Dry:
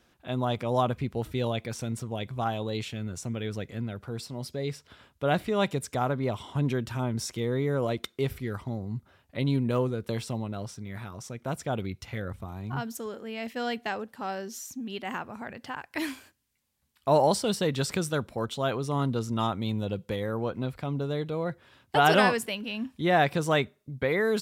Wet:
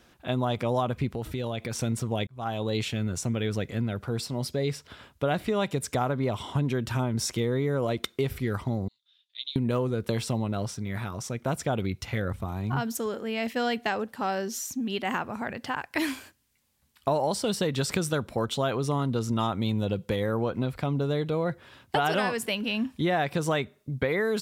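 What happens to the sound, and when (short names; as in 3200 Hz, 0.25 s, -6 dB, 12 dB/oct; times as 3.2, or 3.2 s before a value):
1.08–1.76 compressor 5:1, threshold -34 dBFS
2.27–2.8 fade in
8.88–9.56 ladder band-pass 3700 Hz, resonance 85%
whole clip: compressor 6:1, threshold -29 dBFS; gain +6 dB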